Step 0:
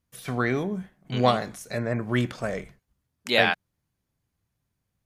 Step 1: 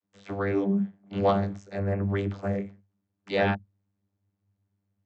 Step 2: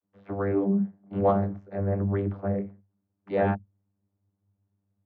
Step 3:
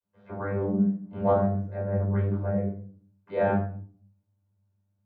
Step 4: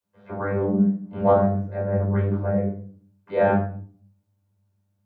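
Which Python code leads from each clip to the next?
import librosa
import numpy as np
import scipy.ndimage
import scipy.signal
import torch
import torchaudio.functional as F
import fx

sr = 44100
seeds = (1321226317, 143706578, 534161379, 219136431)

y1 = fx.vocoder(x, sr, bands=32, carrier='saw', carrier_hz=99.1)
y2 = scipy.signal.sosfilt(scipy.signal.butter(2, 1200.0, 'lowpass', fs=sr, output='sos'), y1)
y2 = F.gain(torch.from_numpy(y2), 1.0).numpy()
y3 = fx.room_shoebox(y2, sr, seeds[0], volume_m3=470.0, walls='furnished', distance_m=5.1)
y3 = F.gain(torch.from_numpy(y3), -8.5).numpy()
y4 = fx.low_shelf(y3, sr, hz=140.0, db=-4.0)
y4 = F.gain(torch.from_numpy(y4), 5.5).numpy()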